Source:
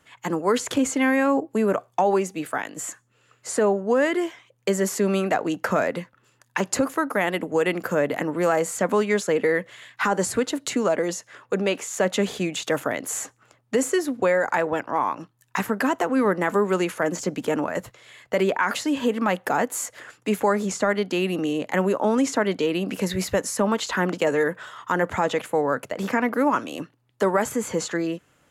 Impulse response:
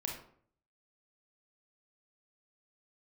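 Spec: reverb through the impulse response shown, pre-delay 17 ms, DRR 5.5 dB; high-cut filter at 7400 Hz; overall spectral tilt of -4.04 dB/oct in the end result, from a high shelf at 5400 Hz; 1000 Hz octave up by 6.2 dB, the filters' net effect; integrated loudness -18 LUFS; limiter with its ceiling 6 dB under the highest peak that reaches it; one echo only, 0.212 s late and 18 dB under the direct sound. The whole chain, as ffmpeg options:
-filter_complex "[0:a]lowpass=7.4k,equalizer=f=1k:t=o:g=7.5,highshelf=f=5.4k:g=7,alimiter=limit=-10.5dB:level=0:latency=1,aecho=1:1:212:0.126,asplit=2[a][b];[1:a]atrim=start_sample=2205,adelay=17[c];[b][c]afir=irnorm=-1:irlink=0,volume=-6.5dB[d];[a][d]amix=inputs=2:normalize=0,volume=4dB"

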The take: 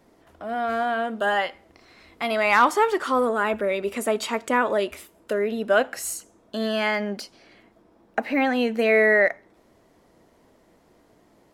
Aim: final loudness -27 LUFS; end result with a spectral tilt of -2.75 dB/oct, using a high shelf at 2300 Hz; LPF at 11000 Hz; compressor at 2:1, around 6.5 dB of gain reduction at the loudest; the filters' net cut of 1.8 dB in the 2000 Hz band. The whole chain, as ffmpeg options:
-af "lowpass=11k,equalizer=f=2k:t=o:g=-4.5,highshelf=f=2.3k:g=5,acompressor=threshold=-25dB:ratio=2,volume=0.5dB"

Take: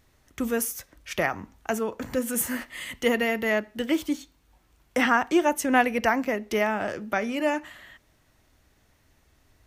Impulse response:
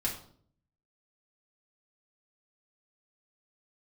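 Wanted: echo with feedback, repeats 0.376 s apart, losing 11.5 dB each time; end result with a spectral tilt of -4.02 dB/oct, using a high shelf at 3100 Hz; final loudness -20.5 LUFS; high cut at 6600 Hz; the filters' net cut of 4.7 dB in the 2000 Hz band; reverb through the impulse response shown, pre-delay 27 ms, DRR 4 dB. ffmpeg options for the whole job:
-filter_complex "[0:a]lowpass=6.6k,equalizer=f=2k:t=o:g=-3.5,highshelf=f=3.1k:g=-7,aecho=1:1:376|752|1128:0.266|0.0718|0.0194,asplit=2[a][b];[1:a]atrim=start_sample=2205,adelay=27[c];[b][c]afir=irnorm=-1:irlink=0,volume=-8.5dB[d];[a][d]amix=inputs=2:normalize=0,volume=5.5dB"

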